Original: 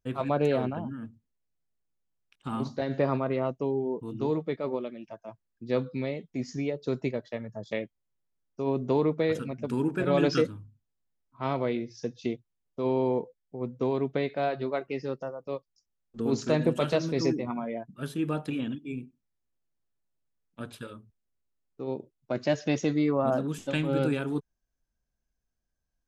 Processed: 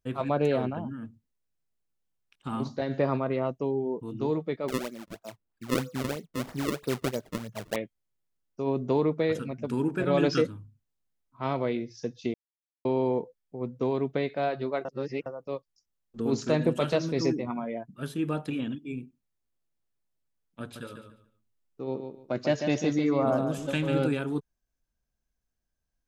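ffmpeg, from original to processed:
ffmpeg -i in.wav -filter_complex "[0:a]asettb=1/sr,asplit=3[link_01][link_02][link_03];[link_01]atrim=end=4.684[link_04];[link_02]atrim=start=4.68:end=7.76,asetpts=PTS-STARTPTS,afade=type=in:duration=0.004:curve=qsin,afade=type=out:start_time=3.076:duration=0.004:curve=qsin,acrusher=samples=32:mix=1:aa=0.000001:lfo=1:lforange=51.2:lforate=3.1[link_05];[link_03]atrim=start=7.756[link_06];[link_04][link_05]acrossfade=duration=0.004:curve1=hsin:curve2=qsin[link_07];[link_07][link_06]acrossfade=duration=0.004:curve1=qsin:curve2=hsin,asettb=1/sr,asplit=3[link_08][link_09][link_10];[link_08]atrim=end=20.614[link_11];[link_09]atrim=start=20.61:end=24.06,asetpts=PTS-STARTPTS,afade=type=in:duration=0.004:curve=qsin,afade=type=out:start_time=3.446:duration=0.004:curve=qsin,aecho=1:1:144|288|432:0.447|0.0983|0.0216,atrim=end_sample=152145[link_12];[link_10]atrim=start=24.056[link_13];[link_11][link_12]acrossfade=duration=0.004:curve1=hsin:curve2=qsin[link_14];[link_14][link_13]acrossfade=duration=0.004:curve1=qsin:curve2=hsin,asplit=5[link_15][link_16][link_17][link_18][link_19];[link_15]atrim=end=12.34,asetpts=PTS-STARTPTS,afade=type=out:start_time=12.336:duration=0.004:curve=hsin[link_20];[link_16]atrim=start=12.34:end=12.85,asetpts=PTS-STARTPTS,volume=0[link_21];[link_17]atrim=start=12.85:end=14.852,asetpts=PTS-STARTPTS,afade=type=in:duration=0.004:curve=hsin[link_22];[link_18]atrim=start=14.848:end=15.262,asetpts=PTS-STARTPTS,areverse[link_23];[link_19]atrim=start=15.258[link_24];[link_20][link_21][link_22]concat=n=3:v=0:a=1[link_25];[link_25][link_23]acrossfade=duration=0.004:curve1=hsin:curve2=hsin[link_26];[link_26][link_24]acrossfade=duration=0.004:curve1=hsin:curve2=hsin" out.wav

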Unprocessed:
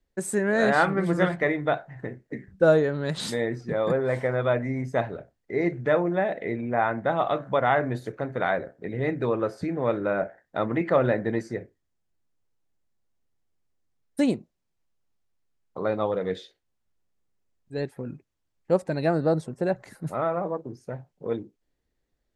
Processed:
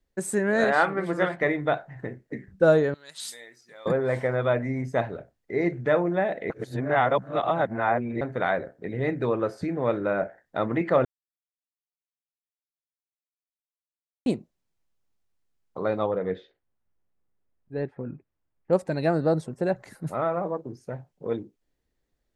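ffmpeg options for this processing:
ffmpeg -i in.wav -filter_complex "[0:a]asettb=1/sr,asplit=3[link_01][link_02][link_03];[link_01]atrim=end=0.644[link_04];[link_02]atrim=start=0.64:end=1.41,asetpts=PTS-STARTPTS,afade=type=in:duration=0.004:curve=qsin,afade=type=out:start_time=0.766:duration=0.004:curve=qsin,bass=frequency=250:gain=-10,treble=frequency=4000:gain=-5[link_05];[link_03]atrim=start=1.406[link_06];[link_04][link_05]acrossfade=duration=0.004:curve1=hsin:curve2=qsin[link_07];[link_07][link_06]acrossfade=duration=0.004:curve1=qsin:curve2=hsin,asettb=1/sr,asplit=3[link_08][link_09][link_10];[link_08]atrim=end=2.944[link_11];[link_09]atrim=start=2.94:end=3.86,asetpts=PTS-STARTPTS,afade=type=in:duration=0.004:curve=qsin,afade=type=out:start_time=0.916:duration=0.004:curve=qsin,aderivative[link_12];[link_10]atrim=start=3.856[link_13];[link_11][link_12]acrossfade=duration=0.004:curve1=hsin:curve2=qsin[link_14];[link_14][link_13]acrossfade=duration=0.004:curve1=qsin:curve2=hsin,asettb=1/sr,asplit=3[link_15][link_16][link_17];[link_15]atrim=end=16.064[link_18];[link_16]atrim=start=16.06:end=18.73,asetpts=PTS-STARTPTS,afade=type=in:duration=0.004:curve=qsin,afade=type=out:start_time=2.666:duration=0.004:curve=qsin,lowpass=2000[link_19];[link_17]atrim=start=18.726[link_20];[link_18][link_19]acrossfade=duration=0.004:curve1=hsin:curve2=qsin[link_21];[link_21][link_20]acrossfade=duration=0.004:curve1=qsin:curve2=hsin,asplit=5[link_22][link_23][link_24][link_25][link_26];[link_22]atrim=end=6.502[link_27];[link_23]atrim=start=6.498:end=8.212,asetpts=PTS-STARTPTS,areverse[link_28];[link_24]atrim=start=8.208:end=11.05,asetpts=PTS-STARTPTS,afade=type=out:start_time=2.838:duration=0.004:curve=hsin[link_29];[link_25]atrim=start=11.05:end=14.26,asetpts=PTS-STARTPTS,volume=0[link_30];[link_26]atrim=start=14.26,asetpts=PTS-STARTPTS,afade=type=in:duration=0.004:curve=hsin[link_31];[link_27][link_28]acrossfade=duration=0.004:curve1=hsin:curve2=hsin[link_32];[link_29][link_30][link_31]concat=n=3:v=0:a=1[link_33];[link_32][link_33]acrossfade=duration=0.004:curve1=hsin:curve2=hsin" out.wav

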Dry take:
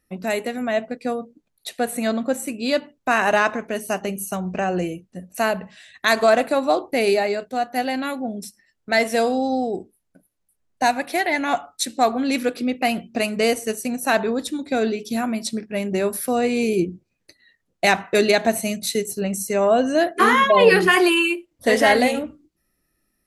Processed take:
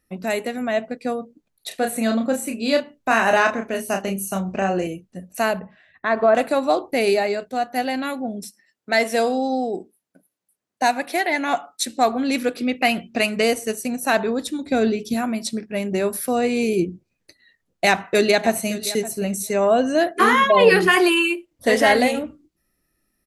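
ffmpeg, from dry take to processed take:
ffmpeg -i in.wav -filter_complex "[0:a]asettb=1/sr,asplit=3[link_01][link_02][link_03];[link_01]atrim=end=1.684[link_04];[link_02]atrim=start=1.68:end=4.87,asetpts=PTS-STARTPTS,afade=type=in:duration=0.004:curve=qsin,afade=type=out:start_time=3.186:duration=0.004:curve=qsin,asplit=2[link_05][link_06];[link_06]adelay=31,volume=-5dB[link_07];[link_05][link_07]amix=inputs=2:normalize=0,atrim=end_sample=140679[link_08];[link_03]atrim=start=4.866[link_09];[link_04][link_08]acrossfade=duration=0.004:curve1=hsin:curve2=qsin[link_10];[link_10][link_09]acrossfade=duration=0.004:curve1=qsin:curve2=hsin,asettb=1/sr,asplit=3[link_11][link_12][link_13];[link_11]atrim=end=5.594[link_14];[link_12]atrim=start=5.59:end=6.35,asetpts=PTS-STARTPTS,afade=type=in:duration=0.004:curve=qsin,afade=type=out:start_time=0.756:duration=0.004:curve=qsin,lowpass=1400[link_15];[link_13]atrim=start=6.346[link_16];[link_14][link_15]acrossfade=duration=0.004:curve1=hsin:curve2=qsin[link_17];[link_17][link_16]acrossfade=duration=0.004:curve1=qsin:curve2=hsin,asettb=1/sr,asplit=3[link_18][link_19][link_20];[link_18]atrim=end=8.434[link_21];[link_19]atrim=start=8.43:end=11.87,asetpts=PTS-STARTPTS,afade=type=in:duration=0.004:curve=qsin,afade=type=out:start_time=3.436:duration=0.004:curve=qsin,highpass=180[link_22];[link_20]atrim=start=11.866[link_23];[link_21][link_22]acrossfade=duration=0.004:curve1=hsin:curve2=qsin[link_24];[link_24][link_23]acrossfade=duration=0.004:curve1=qsin:curve2=hsin,asettb=1/sr,asplit=3[link_25][link_26][link_27];[link_25]atrim=end=12.614[link_28];[link_26]atrim=start=12.61:end=13.42,asetpts=PTS-STARTPTS,afade=type=in:duration=0.004:curve=qsin,afade=type=out:start_time=0.806:duration=0.004:curve=qsin,equalizer=frequency=2300:width=0.65:gain=5[link_29];[link_27]atrim=start=13.416[link_30];[link_28][link_29]acrossfade=duration=0.004:curve1=hsin:curve2=qsin[link_31];[link_31][link_30]acrossfade=duration=0.004:curve1=qsin:curve2=hsin,asettb=1/sr,asplit=3[link_32][link_33][link_34];[link_32]atrim=end=14.644[link_35];[link_33]atrim=start=14.64:end=15.14,asetpts=PTS-STARTPTS,afade=type=in:duration=0.004:curve=qsin,afade=type=out:start_time=0.496:duration=0.004:curve=qsin,lowshelf=frequency=190:gain=9[link_36];[link_34]atrim=start=15.136[link_37];[link_35][link_36]acrossfade=duration=0.004:curve1=hsin:curve2=qsin[link_38];[link_38][link_37]acrossfade=duration=0.004:curve1=qsin:curve2=hsin,asplit=2[link_39][link_40];[link_40]afade=type=in:start_time=17.86:duration=0.01,afade=type=out:start_time=18.94:duration=0.01,aecho=0:1:570|1140:0.158489|0.0158489[link_41];[link_39][link_41]amix=inputs=2:normalize=0" out.wav

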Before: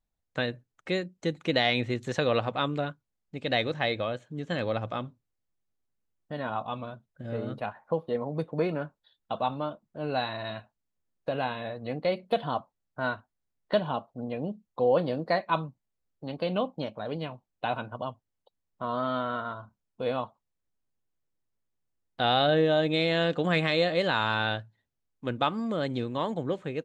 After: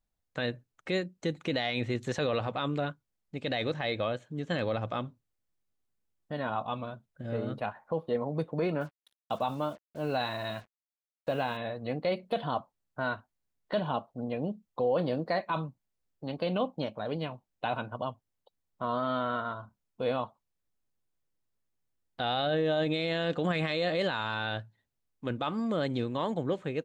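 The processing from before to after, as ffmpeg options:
ffmpeg -i in.wav -filter_complex "[0:a]asettb=1/sr,asplit=3[link_01][link_02][link_03];[link_01]atrim=end=8.814[link_04];[link_02]atrim=start=8.81:end=11.57,asetpts=PTS-STARTPTS,afade=type=in:duration=0.004:curve=qsin,afade=type=out:start_time=2.756:duration=0.004:curve=qsin,acrusher=bits=8:mix=0:aa=0.5[link_05];[link_03]atrim=start=11.566[link_06];[link_04][link_05]acrossfade=duration=0.004:curve1=hsin:curve2=qsin[link_07];[link_07][link_06]acrossfade=duration=0.004:curve1=qsin:curve2=hsin,alimiter=limit=-20dB:level=0:latency=1:release=15" out.wav

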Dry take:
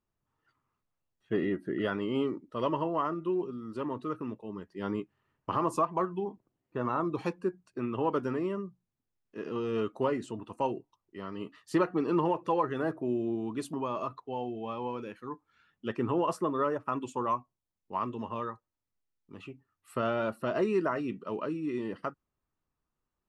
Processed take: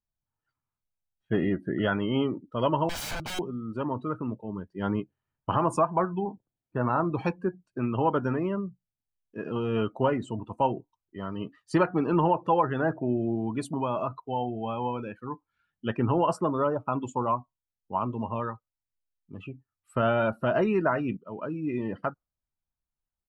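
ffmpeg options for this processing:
ffmpeg -i in.wav -filter_complex "[0:a]asettb=1/sr,asplit=3[link_01][link_02][link_03];[link_01]atrim=end=2.894[link_04];[link_02]atrim=start=2.89:end=3.39,asetpts=PTS-STARTPTS,afade=type=in:duration=0.004:curve=qsin,afade=type=out:start_time=0.496:duration=0.004:curve=qsin,aeval=exprs='(mod(56.2*val(0)+1,2)-1)/56.2':channel_layout=same[link_05];[link_03]atrim=start=3.386[link_06];[link_04][link_05]acrossfade=duration=0.004:curve1=hsin:curve2=qsin[link_07];[link_07][link_06]acrossfade=duration=0.004:curve1=qsin:curve2=hsin,asettb=1/sr,asplit=3[link_08][link_09][link_10];[link_08]atrim=end=16.554[link_11];[link_09]atrim=start=16.55:end=18.4,asetpts=PTS-STARTPTS,afade=type=in:duration=0.004:curve=qsin,afade=type=out:start_time=1.846:duration=0.004:curve=qsin,equalizer=frequency=1700:width=3.3:gain=-10.5[link_12];[link_10]atrim=start=18.396[link_13];[link_11][link_12]acrossfade=duration=0.004:curve1=hsin:curve2=qsin[link_14];[link_14][link_13]acrossfade=duration=0.004:curve1=qsin:curve2=hsin,asplit=2[link_15][link_16];[link_15]atrim=end=21.17,asetpts=PTS-STARTPTS,afade=type=out:start_time=21.166:duration=0.004:curve=hsin:silence=0.188365[link_17];[link_16]atrim=start=21.17,asetpts=PTS-STARTPTS,afade=type=in:duration=0.53:silence=0.188365[link_18];[link_17][link_18]concat=n=2:v=0:a=1,afftdn=noise_reduction=17:noise_floor=-49,lowshelf=frequency=82:gain=8.5,aecho=1:1:1.3:0.37,volume=5dB" out.wav

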